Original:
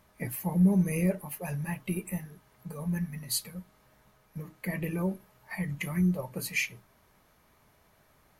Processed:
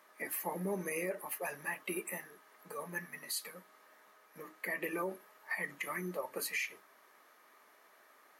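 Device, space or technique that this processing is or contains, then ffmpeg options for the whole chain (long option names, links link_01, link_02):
laptop speaker: -af "highpass=frequency=310:width=0.5412,highpass=frequency=310:width=1.3066,equalizer=frequency=1200:width_type=o:width=0.25:gain=7,equalizer=frequency=1800:width_type=o:width=0.45:gain=6.5,alimiter=level_in=3dB:limit=-24dB:level=0:latency=1:release=91,volume=-3dB"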